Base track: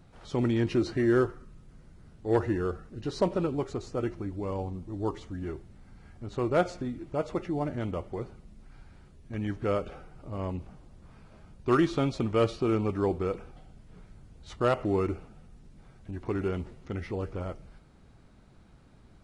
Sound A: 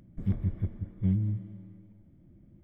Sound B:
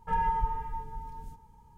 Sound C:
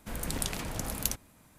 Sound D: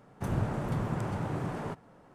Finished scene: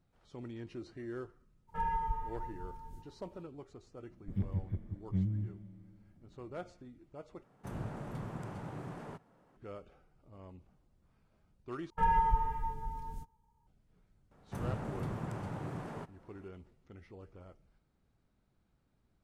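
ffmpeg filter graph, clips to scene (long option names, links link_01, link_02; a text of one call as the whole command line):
ffmpeg -i bed.wav -i cue0.wav -i cue1.wav -i cue2.wav -i cue3.wav -filter_complex "[2:a]asplit=2[link_01][link_02];[4:a]asplit=2[link_03][link_04];[0:a]volume=-18.5dB[link_05];[link_03]equalizer=frequency=92:width_type=o:width=0.34:gain=-4[link_06];[link_02]agate=range=-15dB:threshold=-46dB:ratio=16:release=100:detection=peak[link_07];[link_05]asplit=3[link_08][link_09][link_10];[link_08]atrim=end=7.434[link_11];[link_06]atrim=end=2.14,asetpts=PTS-STARTPTS,volume=-9.5dB[link_12];[link_09]atrim=start=9.566:end=11.904[link_13];[link_07]atrim=end=1.77[link_14];[link_10]atrim=start=13.666[link_15];[link_01]atrim=end=1.77,asetpts=PTS-STARTPTS,volume=-6dB,afade=type=in:duration=0.02,afade=type=out:start_time=1.75:duration=0.02,adelay=1670[link_16];[1:a]atrim=end=2.63,asetpts=PTS-STARTPTS,volume=-6dB,afade=type=in:duration=0.004:curve=hsin,afade=type=out:start_time=2.626:duration=0.004:curve=hsin,adelay=4100[link_17];[link_04]atrim=end=2.14,asetpts=PTS-STARTPTS,volume=-7dB,afade=type=in:duration=0.004:curve=hsin,afade=type=out:start_time=2.136:duration=0.004:curve=hsin,adelay=14310[link_18];[link_11][link_12]acrossfade=duration=0.004:curve1=hsin:curve2=hsin[link_19];[link_19][link_13]acrossfade=duration=0.004:curve1=hsin:curve2=hsin[link_20];[link_20][link_14]acrossfade=duration=0.004:curve1=hsin:curve2=hsin[link_21];[link_21][link_15]acrossfade=duration=0.004:curve1=hsin:curve2=hsin[link_22];[link_22][link_16][link_17][link_18]amix=inputs=4:normalize=0" out.wav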